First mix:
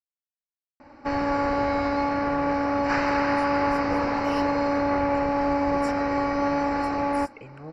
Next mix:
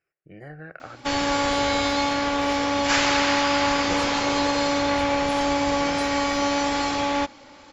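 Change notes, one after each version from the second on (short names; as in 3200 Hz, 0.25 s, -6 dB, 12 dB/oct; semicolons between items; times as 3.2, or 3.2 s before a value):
speech: entry -1.85 s; background: remove running mean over 13 samples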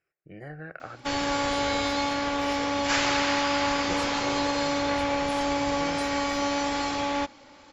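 background -4.0 dB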